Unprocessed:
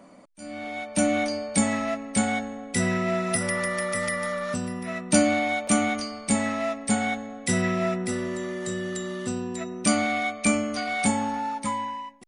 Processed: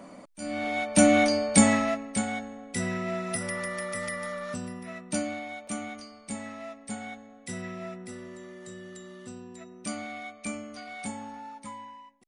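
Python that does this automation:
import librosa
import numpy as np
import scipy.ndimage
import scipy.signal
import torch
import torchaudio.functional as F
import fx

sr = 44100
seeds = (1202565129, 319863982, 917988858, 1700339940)

y = fx.gain(x, sr, db=fx.line((1.69, 4.0), (2.24, -6.0), (4.67, -6.0), (5.46, -13.0)))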